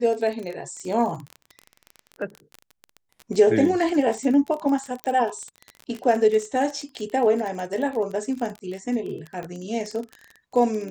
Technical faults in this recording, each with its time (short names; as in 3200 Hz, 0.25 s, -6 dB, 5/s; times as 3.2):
crackle 26/s -28 dBFS
5.04 pop -14 dBFS
9.43 pop -22 dBFS